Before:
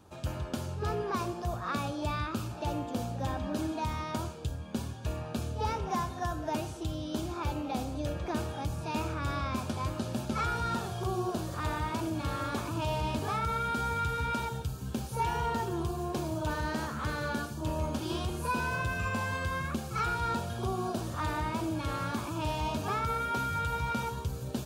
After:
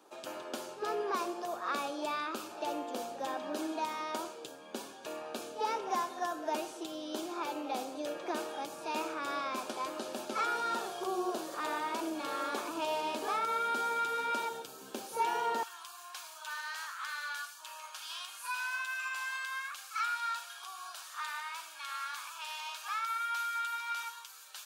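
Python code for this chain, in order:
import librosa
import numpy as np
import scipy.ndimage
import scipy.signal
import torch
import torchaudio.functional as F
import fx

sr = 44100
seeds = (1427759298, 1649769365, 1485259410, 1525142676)

y = fx.highpass(x, sr, hz=fx.steps((0.0, 320.0), (15.63, 1200.0)), slope=24)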